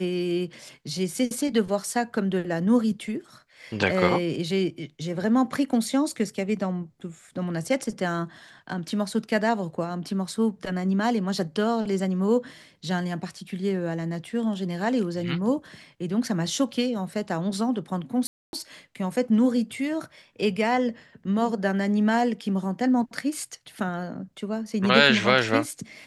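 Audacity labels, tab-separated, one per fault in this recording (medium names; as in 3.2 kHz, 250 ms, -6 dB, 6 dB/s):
18.270000	18.530000	dropout 261 ms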